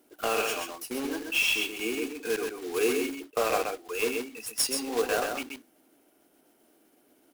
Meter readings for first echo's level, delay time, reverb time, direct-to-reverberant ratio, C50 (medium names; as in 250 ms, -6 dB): -5.0 dB, 130 ms, no reverb, no reverb, no reverb